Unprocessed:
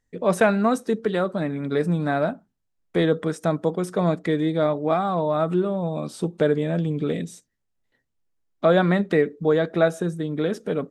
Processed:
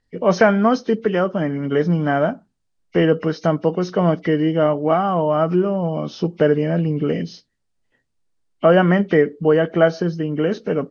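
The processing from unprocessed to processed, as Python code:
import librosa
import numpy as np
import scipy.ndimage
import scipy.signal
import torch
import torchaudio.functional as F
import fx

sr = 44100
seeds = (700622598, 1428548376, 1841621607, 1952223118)

y = fx.freq_compress(x, sr, knee_hz=2000.0, ratio=1.5)
y = y * 10.0 ** (4.5 / 20.0)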